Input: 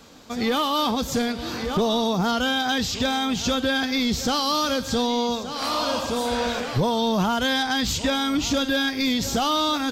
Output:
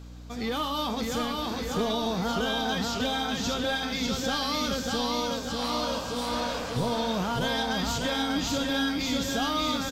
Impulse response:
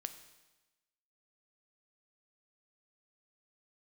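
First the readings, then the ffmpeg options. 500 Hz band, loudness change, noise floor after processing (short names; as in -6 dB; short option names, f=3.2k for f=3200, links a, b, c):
-5.0 dB, -5.0 dB, -35 dBFS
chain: -filter_complex "[0:a]aeval=exprs='val(0)+0.0178*(sin(2*PI*60*n/s)+sin(2*PI*2*60*n/s)/2+sin(2*PI*3*60*n/s)/3+sin(2*PI*4*60*n/s)/4+sin(2*PI*5*60*n/s)/5)':c=same,aecho=1:1:595|1190|1785|2380|2975|3570|4165:0.708|0.361|0.184|0.0939|0.0479|0.0244|0.0125[a];[1:a]atrim=start_sample=2205,asetrate=88200,aresample=44100[b];[a][b]afir=irnorm=-1:irlink=0,volume=1.5dB"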